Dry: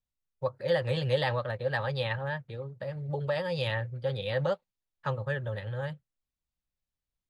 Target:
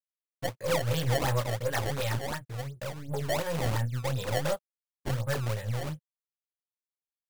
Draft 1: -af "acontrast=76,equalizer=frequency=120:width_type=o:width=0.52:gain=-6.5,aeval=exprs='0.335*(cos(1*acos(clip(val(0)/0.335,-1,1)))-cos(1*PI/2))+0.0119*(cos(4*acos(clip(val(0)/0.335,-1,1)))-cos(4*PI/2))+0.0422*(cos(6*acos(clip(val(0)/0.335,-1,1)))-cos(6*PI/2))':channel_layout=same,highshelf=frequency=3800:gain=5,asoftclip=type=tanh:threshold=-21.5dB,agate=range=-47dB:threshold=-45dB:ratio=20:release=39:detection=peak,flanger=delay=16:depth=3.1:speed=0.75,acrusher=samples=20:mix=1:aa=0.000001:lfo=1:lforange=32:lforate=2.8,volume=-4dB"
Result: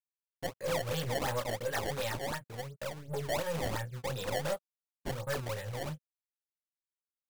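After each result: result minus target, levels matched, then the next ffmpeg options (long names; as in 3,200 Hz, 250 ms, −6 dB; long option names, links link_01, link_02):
soft clipping: distortion +12 dB; 125 Hz band −4.5 dB
-af "acontrast=76,equalizer=frequency=120:width_type=o:width=0.52:gain=-6.5,aeval=exprs='0.335*(cos(1*acos(clip(val(0)/0.335,-1,1)))-cos(1*PI/2))+0.0119*(cos(4*acos(clip(val(0)/0.335,-1,1)))-cos(4*PI/2))+0.0422*(cos(6*acos(clip(val(0)/0.335,-1,1)))-cos(6*PI/2))':channel_layout=same,highshelf=frequency=3800:gain=5,asoftclip=type=tanh:threshold=-12dB,agate=range=-47dB:threshold=-45dB:ratio=20:release=39:detection=peak,flanger=delay=16:depth=3.1:speed=0.75,acrusher=samples=20:mix=1:aa=0.000001:lfo=1:lforange=32:lforate=2.8,volume=-4dB"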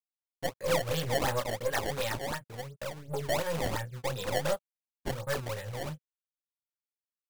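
125 Hz band −5.5 dB
-af "acontrast=76,equalizer=frequency=120:width_type=o:width=0.52:gain=3.5,aeval=exprs='0.335*(cos(1*acos(clip(val(0)/0.335,-1,1)))-cos(1*PI/2))+0.0119*(cos(4*acos(clip(val(0)/0.335,-1,1)))-cos(4*PI/2))+0.0422*(cos(6*acos(clip(val(0)/0.335,-1,1)))-cos(6*PI/2))':channel_layout=same,highshelf=frequency=3800:gain=5,asoftclip=type=tanh:threshold=-12dB,agate=range=-47dB:threshold=-45dB:ratio=20:release=39:detection=peak,flanger=delay=16:depth=3.1:speed=0.75,acrusher=samples=20:mix=1:aa=0.000001:lfo=1:lforange=32:lforate=2.8,volume=-4dB"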